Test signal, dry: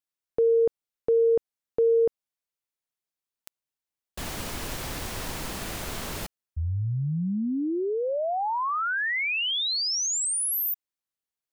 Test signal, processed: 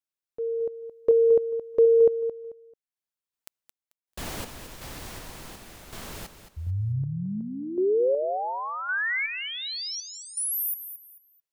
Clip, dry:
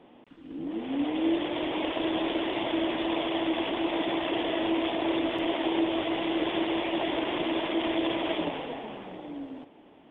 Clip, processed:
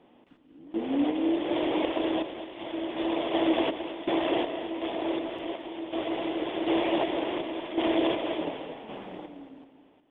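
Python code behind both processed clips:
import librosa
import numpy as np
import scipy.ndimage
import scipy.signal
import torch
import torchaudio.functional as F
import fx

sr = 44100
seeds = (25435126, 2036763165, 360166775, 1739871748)

p1 = fx.tremolo_random(x, sr, seeds[0], hz=2.7, depth_pct=85)
p2 = fx.dynamic_eq(p1, sr, hz=470.0, q=0.83, threshold_db=-41.0, ratio=5.0, max_db=6)
y = p2 + fx.echo_feedback(p2, sr, ms=220, feedback_pct=27, wet_db=-11, dry=0)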